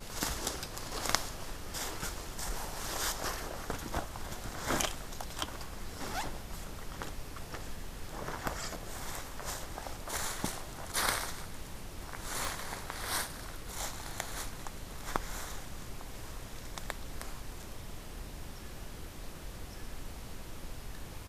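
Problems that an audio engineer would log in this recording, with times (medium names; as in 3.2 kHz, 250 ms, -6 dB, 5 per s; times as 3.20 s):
12.45 s: pop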